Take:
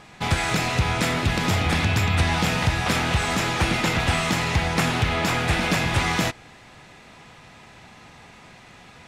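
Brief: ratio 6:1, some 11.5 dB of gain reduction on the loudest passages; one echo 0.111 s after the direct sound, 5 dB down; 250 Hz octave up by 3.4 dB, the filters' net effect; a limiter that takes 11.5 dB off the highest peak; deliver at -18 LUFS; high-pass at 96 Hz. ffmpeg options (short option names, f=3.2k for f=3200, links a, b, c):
-af "highpass=96,equalizer=f=250:t=o:g=5,acompressor=threshold=-30dB:ratio=6,alimiter=level_in=5.5dB:limit=-24dB:level=0:latency=1,volume=-5.5dB,aecho=1:1:111:0.562,volume=19.5dB"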